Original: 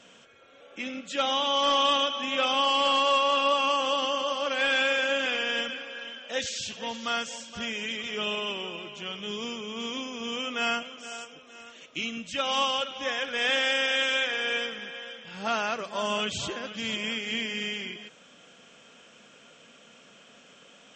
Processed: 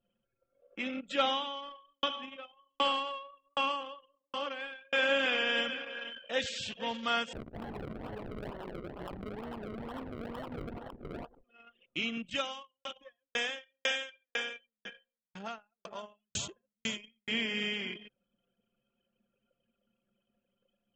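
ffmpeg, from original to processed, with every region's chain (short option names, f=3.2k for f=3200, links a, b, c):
-filter_complex "[0:a]asettb=1/sr,asplit=3[a][b][c];[a]atrim=end=1.264[d];[b]atrim=start=1.26:end=4.93,asetpts=PTS-STARTPTS,afade=t=in:d=0.004:c=qsin,afade=t=out:st=3.666:d=0.004:c=qsin,bandreject=f=600:w=8.7,aeval=exprs='val(0)*pow(10,-34*if(lt(mod(1.3*n/s,1),2*abs(1.3)/1000),1-mod(1.3*n/s,1)/(2*abs(1.3)/1000),(mod(1.3*n/s,1)-2*abs(1.3)/1000)/(1-2*abs(1.3)/1000))/20)':c=same[e];[c]atrim=start=4.926[f];[d][e]acrossfade=d=0.004:c1=hsin:c2=qsin[g];[g][f]acrossfade=d=0.004:c1=qsin:c2=hsin,asettb=1/sr,asplit=3[h][i][j];[h]atrim=end=7.334[k];[i]atrim=start=7.33:end=11.44,asetpts=PTS-STARTPTS,afade=t=in:d=0.004:c=qsin,afade=t=out:st=4.106:d=0.004:c=qsin,acompressor=threshold=-35dB:ratio=10:attack=3.2:release=140:knee=1:detection=peak,acrusher=samples=35:mix=1:aa=0.000001:lfo=1:lforange=35:lforate=2.2[l];[j]atrim=start=11.436[m];[k][l]acrossfade=d=0.004:c1=hsin:c2=qsin[n];[n][m]acrossfade=d=0.004:c1=qsin:c2=hsin,asettb=1/sr,asplit=3[o][p][q];[o]atrim=end=12.354[r];[p]atrim=start=12.35:end=17.28,asetpts=PTS-STARTPTS,afade=t=in:d=0.004:c=qsin,afade=t=out:st=4.926:d=0.004:c=qsin,lowpass=f=6.7k:t=q:w=7.2,aecho=1:1:88:0.237,atrim=end_sample=217413,aeval=exprs='val(0)*pow(10,-39*if(lt(mod(2*n/s,1),2*abs(2)/1000),1-mod(2*n/s,1)/(2*abs(2)/1000),(mod(2*n/s,1)-2*abs(2)/1000)/(1-2*abs(2)/1000))/20)':c=same[s];[q]atrim=start=17.276[t];[r][s]acrossfade=d=0.004:c1=hsin:c2=qsin[u];[u][t]acrossfade=d=0.004:c1=qsin:c2=hsin,equalizer=f=6.2k:t=o:w=0.7:g=-10,anlmdn=0.251,volume=-1dB"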